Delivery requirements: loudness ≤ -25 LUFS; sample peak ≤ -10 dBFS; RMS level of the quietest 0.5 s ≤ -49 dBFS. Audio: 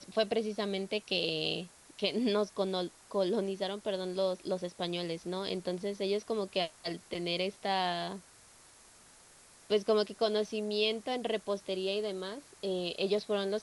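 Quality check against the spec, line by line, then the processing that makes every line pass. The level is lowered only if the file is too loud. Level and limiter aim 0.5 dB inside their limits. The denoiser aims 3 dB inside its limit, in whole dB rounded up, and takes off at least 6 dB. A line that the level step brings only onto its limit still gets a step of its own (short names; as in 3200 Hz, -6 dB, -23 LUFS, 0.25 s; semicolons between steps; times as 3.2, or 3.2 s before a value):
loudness -33.5 LUFS: OK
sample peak -16.0 dBFS: OK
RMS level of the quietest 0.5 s -58 dBFS: OK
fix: none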